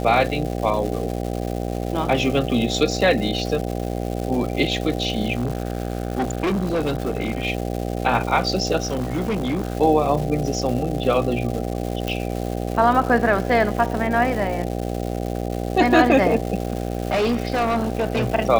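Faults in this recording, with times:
buzz 60 Hz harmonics 13 -26 dBFS
crackle 430/s -28 dBFS
5.35–7.46 clipped -18 dBFS
8.82–9.77 clipped -19 dBFS
12.08 pop -10 dBFS
16.67–18.28 clipped -16.5 dBFS

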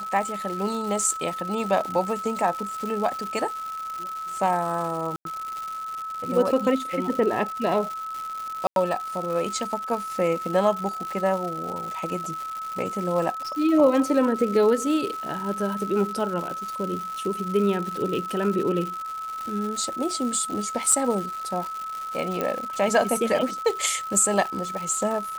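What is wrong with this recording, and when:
crackle 260/s -30 dBFS
tone 1300 Hz -30 dBFS
5.16–5.25 gap 92 ms
8.67–8.76 gap 92 ms
20.92 gap 3.8 ms
22.41 pop -12 dBFS

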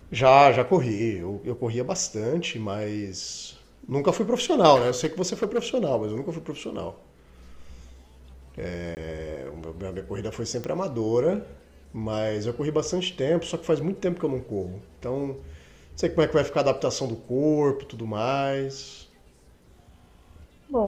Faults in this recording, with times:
4.75–5.58 clipped -18.5 dBFS
8.95–8.97 gap 19 ms
10.64 pop -19 dBFS

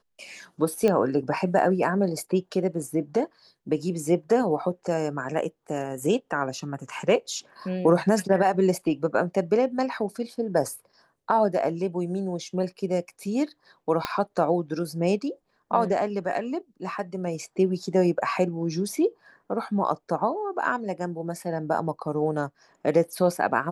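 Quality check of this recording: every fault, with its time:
0.88 pop -12 dBFS
14.05 pop -11 dBFS

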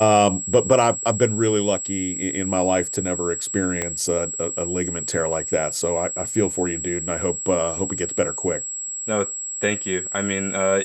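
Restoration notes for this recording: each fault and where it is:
tone 7700 Hz -27 dBFS
3.82 pop -10 dBFS

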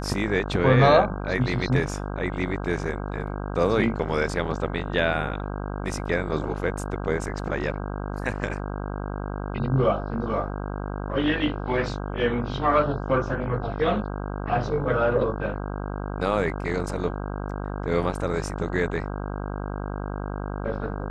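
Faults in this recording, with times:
buzz 50 Hz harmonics 32 -31 dBFS

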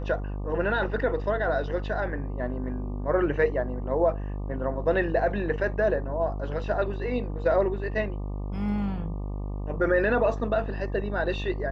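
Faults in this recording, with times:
buzz 50 Hz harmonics 24 -32 dBFS

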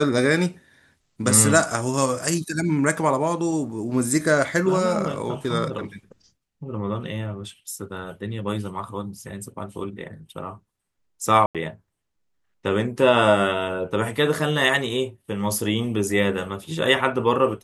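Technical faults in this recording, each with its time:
11.46–11.55 gap 87 ms

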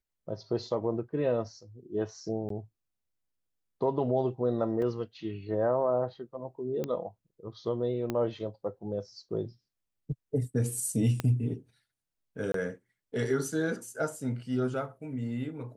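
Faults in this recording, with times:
2.49–2.5 gap 13 ms
4.82 gap 3.5 ms
6.84 pop -20 dBFS
8.1 pop -18 dBFS
11.2 pop -16 dBFS
12.52–12.54 gap 23 ms

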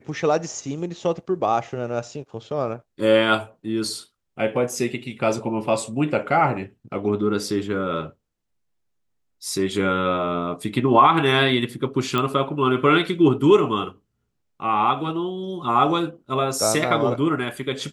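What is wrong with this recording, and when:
12.18 pop -10 dBFS

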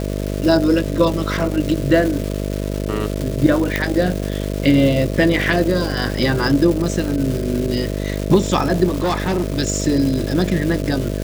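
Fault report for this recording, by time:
buzz 50 Hz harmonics 13 -23 dBFS
crackle 590/s -23 dBFS
3.76 pop -4 dBFS
8.87–9.59 clipped -14.5 dBFS

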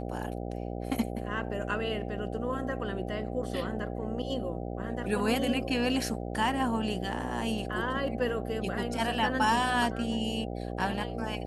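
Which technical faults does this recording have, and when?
buzz 60 Hz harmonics 13 -36 dBFS

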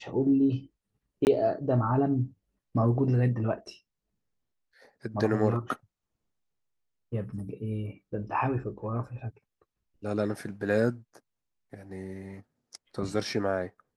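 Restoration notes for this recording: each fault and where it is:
1.25–1.27 gap 19 ms

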